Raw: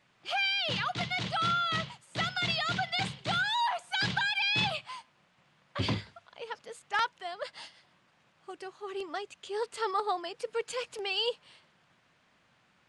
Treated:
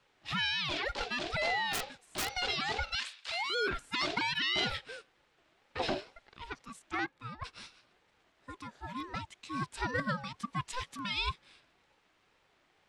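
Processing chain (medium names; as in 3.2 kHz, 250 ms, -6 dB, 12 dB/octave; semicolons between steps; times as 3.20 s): 1.73–2.34 s: integer overflow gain 24.5 dB; 2.95–3.50 s: high-pass 1.5 kHz 24 dB/octave; 6.94–7.44 s: treble shelf 2 kHz -10 dB; ring modulator with a swept carrier 590 Hz, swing 20%, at 2.1 Hz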